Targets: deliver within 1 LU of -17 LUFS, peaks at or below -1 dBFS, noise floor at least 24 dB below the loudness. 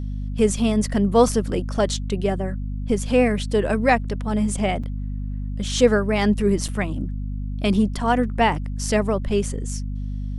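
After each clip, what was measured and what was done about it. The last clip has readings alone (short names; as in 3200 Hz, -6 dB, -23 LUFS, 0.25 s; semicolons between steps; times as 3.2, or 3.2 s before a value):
dropouts 2; longest dropout 5.7 ms; hum 50 Hz; harmonics up to 250 Hz; hum level -25 dBFS; loudness -22.5 LUFS; peak -3.5 dBFS; loudness target -17.0 LUFS
-> interpolate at 4.83/6.68, 5.7 ms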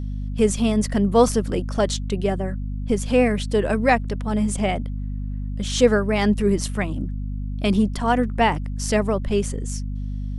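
dropouts 0; hum 50 Hz; harmonics up to 250 Hz; hum level -25 dBFS
-> de-hum 50 Hz, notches 5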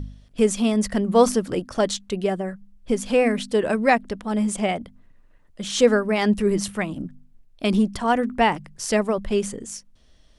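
hum none; loudness -22.5 LUFS; peak -4.5 dBFS; loudness target -17.0 LUFS
-> gain +5.5 dB; limiter -1 dBFS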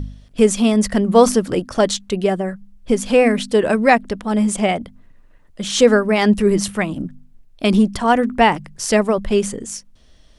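loudness -17.0 LUFS; peak -1.0 dBFS; noise floor -49 dBFS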